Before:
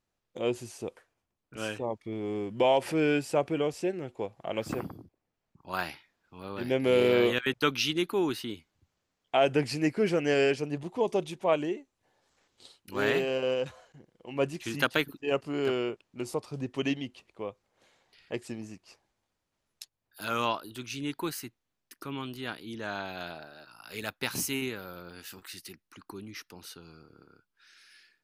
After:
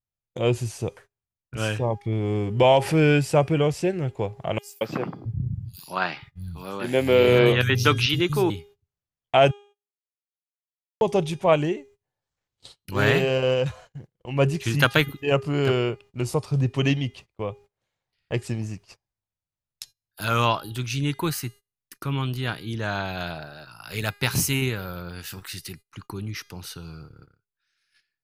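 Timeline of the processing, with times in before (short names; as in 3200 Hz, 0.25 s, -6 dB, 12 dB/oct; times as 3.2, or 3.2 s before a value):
4.58–8.5 three bands offset in time highs, mids, lows 0.23/0.67 s, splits 170/5300 Hz
9.51–11.01 mute
whole clip: de-hum 407.3 Hz, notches 33; gate -54 dBFS, range -24 dB; resonant low shelf 180 Hz +9 dB, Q 1.5; gain +7.5 dB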